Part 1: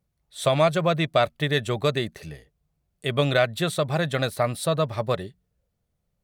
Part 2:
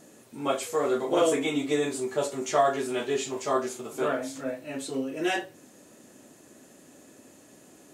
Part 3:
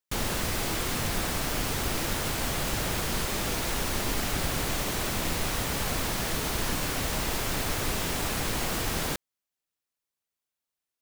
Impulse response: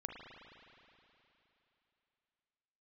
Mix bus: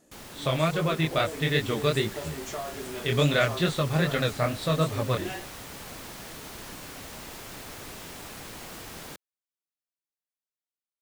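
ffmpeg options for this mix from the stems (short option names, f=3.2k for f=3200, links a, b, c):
-filter_complex "[0:a]lowpass=4.8k,equalizer=f=740:w=1.5:g=-7.5,flanger=delay=19:depth=6.4:speed=2.4,volume=0.5dB[a];[1:a]acompressor=threshold=-26dB:ratio=6,volume=-9.5dB[b];[2:a]lowshelf=f=67:g=-10,volume=-14dB[c];[a][b][c]amix=inputs=3:normalize=0,dynaudnorm=f=490:g=5:m=3dB"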